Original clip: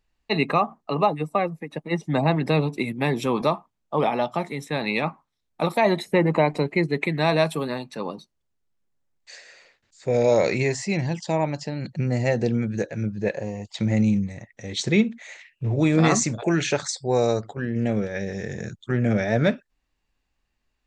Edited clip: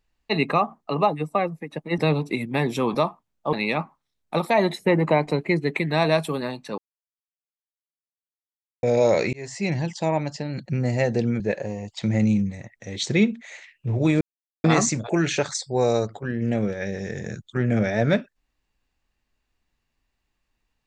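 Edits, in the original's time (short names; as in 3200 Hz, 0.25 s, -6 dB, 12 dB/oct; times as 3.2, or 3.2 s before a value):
1.98–2.45 cut
4–4.8 cut
8.05–10.1 mute
10.6–10.94 fade in
12.67–13.17 cut
15.98 insert silence 0.43 s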